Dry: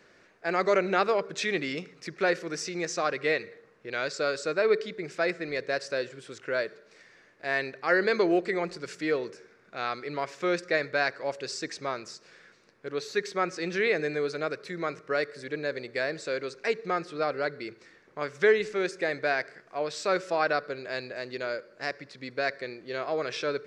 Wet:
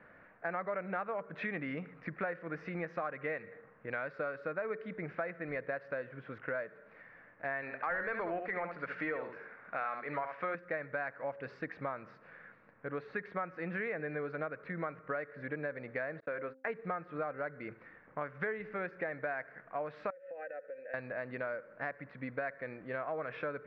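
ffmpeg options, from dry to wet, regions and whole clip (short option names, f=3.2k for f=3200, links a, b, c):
-filter_complex "[0:a]asettb=1/sr,asplit=3[a][b][c];[a]atrim=end=7.624[d];[b]atrim=start=7.62:end=10.55,asetpts=PTS-STARTPTS,afade=t=in:d=0.004:c=qsin,afade=t=out:st=2.926:d=0.004:c=qsin,highshelf=f=3.7k:g=10.5,aecho=1:1:70:0.376,atrim=end_sample=129213,asplit=2[e][f];[f]highpass=f=720:p=1,volume=12dB,asoftclip=type=tanh:threshold=-11dB[g];[e][g]amix=inputs=2:normalize=0,lowpass=f=2.2k:p=1,volume=-6dB[h];[c]atrim=start=10.546[i];[d][h]acrossfade=d=0.004:c1=hsin:c2=qsin[j];[j][i]acrossfade=d=0.004:c1=qsin:c2=hsin,asettb=1/sr,asplit=3[k][l][m];[k]atrim=end=16.204[n];[l]atrim=start=16.2:end=16.7,asetpts=PTS-STARTPTS,afade=t=in:d=0.004:c=qsin,afade=t=out:st=0.496:d=0.004:c=qsin,agate=range=-34dB:threshold=-42dB:ratio=16:release=100:detection=peak,bass=f=250:g=-5,treble=f=4k:g=-14,bandreject=f=262.9:t=h:w=4,bandreject=f=525.8:t=h:w=4,bandreject=f=788.7:t=h:w=4[o];[m]atrim=start=16.696[p];[n][o]acrossfade=d=0.004:c1=hsin:c2=qsin[q];[q][p]acrossfade=d=0.004:c1=qsin:c2=hsin,asettb=1/sr,asplit=3[r][s][t];[r]atrim=end=20.104[u];[s]atrim=start=20.1:end=20.94,asetpts=PTS-STARTPTS,afade=t=in:d=0.004:c=qsin,afade=t=out:st=0.836:d=0.004:c=qsin,asplit=3[v][w][x];[v]bandpass=f=530:t=q:w=8,volume=0dB[y];[w]bandpass=f=1.84k:t=q:w=8,volume=-6dB[z];[x]bandpass=f=2.48k:t=q:w=8,volume=-9dB[aa];[y][z][aa]amix=inputs=3:normalize=0,aecho=1:1:3.9:0.39,atrim=end_sample=37044,acompressor=threshold=-40dB:ratio=12:attack=3.2:release=140:knee=1:detection=peak[ab];[t]atrim=start=20.936[ac];[u][ab]acrossfade=d=0.004:c1=hsin:c2=qsin[ad];[ad][ac]acrossfade=d=0.004:c1=qsin:c2=hsin,lowpass=f=1.9k:w=0.5412,lowpass=f=1.9k:w=1.3066,equalizer=f=380:t=o:w=0.38:g=-14,acompressor=threshold=-38dB:ratio=5,volume=3dB"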